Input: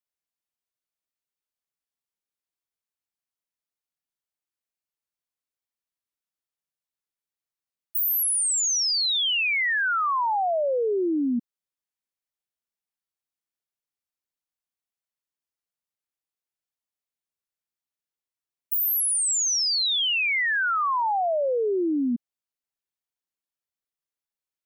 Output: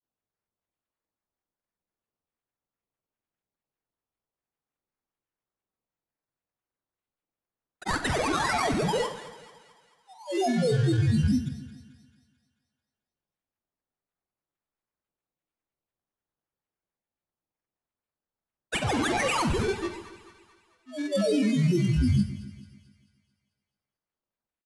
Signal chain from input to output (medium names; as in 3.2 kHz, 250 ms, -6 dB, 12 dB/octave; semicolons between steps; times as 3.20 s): Chebyshev band-stop 820–4600 Hz, order 5; bass shelf 300 Hz +6.5 dB; sample-rate reducer 5.8 kHz, jitter 0%; granulator, spray 100 ms, pitch spread up and down by 12 st; pitch shift -11.5 st; doubling 44 ms -11.5 dB; two-band feedback delay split 900 Hz, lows 141 ms, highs 220 ms, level -14.5 dB; on a send at -13 dB: reverberation RT60 0.60 s, pre-delay 39 ms